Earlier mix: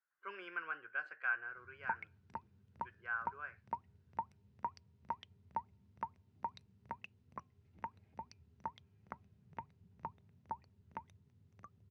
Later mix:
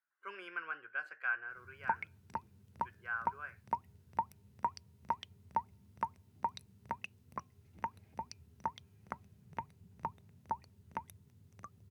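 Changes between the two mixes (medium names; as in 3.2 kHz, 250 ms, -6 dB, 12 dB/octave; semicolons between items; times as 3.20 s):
background +5.0 dB; master: remove distance through air 120 m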